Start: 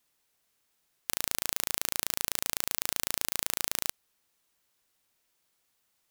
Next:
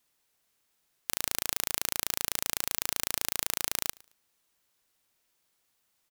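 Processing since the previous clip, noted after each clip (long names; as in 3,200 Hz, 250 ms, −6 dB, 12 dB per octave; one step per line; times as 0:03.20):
repeating echo 110 ms, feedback 27%, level −24 dB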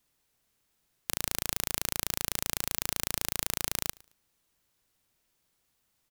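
low-shelf EQ 250 Hz +10 dB
level −1 dB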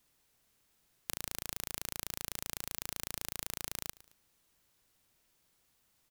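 downward compressor 6 to 1, threshold −34 dBFS, peak gain reduction 10 dB
level +2 dB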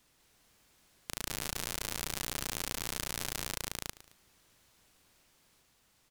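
high-shelf EQ 12,000 Hz −11 dB
brickwall limiter −18 dBFS, peak gain reduction 5.5 dB
delay with pitch and tempo change per echo 200 ms, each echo +2 semitones, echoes 3
level +7 dB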